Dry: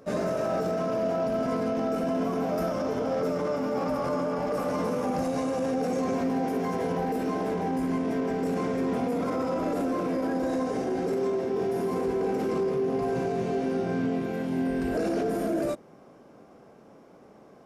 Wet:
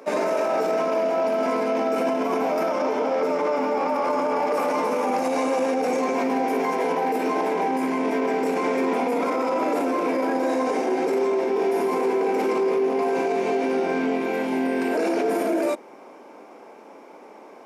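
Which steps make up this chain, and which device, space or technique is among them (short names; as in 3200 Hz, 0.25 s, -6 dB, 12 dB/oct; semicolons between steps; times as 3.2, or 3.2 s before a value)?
laptop speaker (HPF 270 Hz 24 dB/oct; bell 910 Hz +11 dB 0.21 oct; bell 2300 Hz +9 dB 0.35 oct; limiter -22.5 dBFS, peak gain reduction 6 dB); 2.58–4.1 high shelf 7700 Hz -7 dB; gain +7.5 dB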